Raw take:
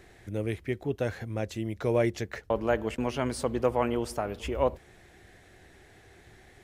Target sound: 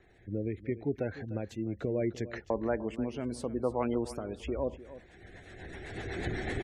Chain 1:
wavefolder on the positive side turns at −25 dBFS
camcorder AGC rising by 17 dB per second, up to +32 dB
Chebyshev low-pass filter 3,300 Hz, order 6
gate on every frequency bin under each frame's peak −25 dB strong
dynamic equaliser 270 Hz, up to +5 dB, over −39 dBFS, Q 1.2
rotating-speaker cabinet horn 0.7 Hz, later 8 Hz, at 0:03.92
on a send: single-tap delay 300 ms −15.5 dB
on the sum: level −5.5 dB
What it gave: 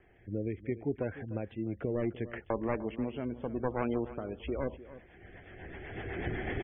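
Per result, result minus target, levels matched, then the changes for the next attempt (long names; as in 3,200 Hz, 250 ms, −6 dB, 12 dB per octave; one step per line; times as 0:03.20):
wavefolder on the positive side: distortion +32 dB; 4,000 Hz band −3.5 dB
change: wavefolder on the positive side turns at −15.5 dBFS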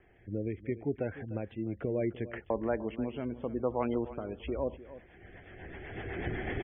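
4,000 Hz band −4.0 dB
remove: Chebyshev low-pass filter 3,300 Hz, order 6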